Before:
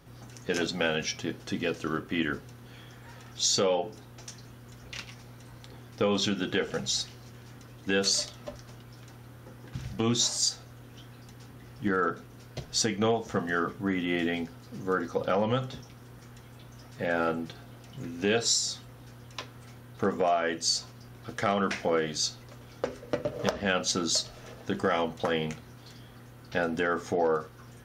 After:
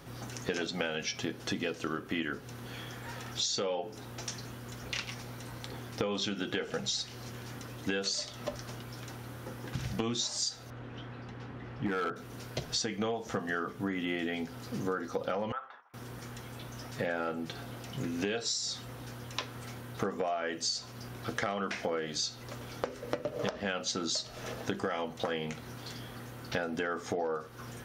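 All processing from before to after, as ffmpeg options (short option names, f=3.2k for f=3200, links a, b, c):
-filter_complex "[0:a]asettb=1/sr,asplit=3[a][b][c];[a]atrim=end=10.704[d];[b]atrim=start=10.7:end=12.16,asetpts=PTS-STARTPTS,afade=t=in:d=0.004:c=qsin,afade=t=out:st=1.456:d=0.004:c=qsin,lowpass=2.6k,asoftclip=type=hard:threshold=-23.5dB[e];[c]atrim=start=12.156[f];[d][e]acrossfade=d=0.004:c1=hsin:c2=qsin[g];[g][f]acrossfade=d=0.004:c1=qsin:c2=hsin,asettb=1/sr,asplit=3[h][i][j];[h]atrim=end=15.524[k];[i]atrim=start=15.52:end=15.94,asetpts=PTS-STARTPTS,afade=t=in:d=0.004:c=qsin,afade=t=out:st=0.416:d=0.004:c=qsin,asuperpass=centerf=1200:order=4:qfactor=1.4,agate=range=-33dB:threshold=-54dB:ratio=3:release=100:detection=peak[l];[j]atrim=start=15.936[m];[k][l]acrossfade=d=0.004:c1=hsin:c2=qsin[n];[n][m]acrossfade=d=0.004:c1=qsin:c2=hsin,acrossover=split=7400[o][p];[p]acompressor=threshold=-55dB:ratio=4:attack=1:release=60[q];[o][q]amix=inputs=2:normalize=0,lowshelf=f=140:g=-6.5,acompressor=threshold=-38dB:ratio=6,volume=7dB"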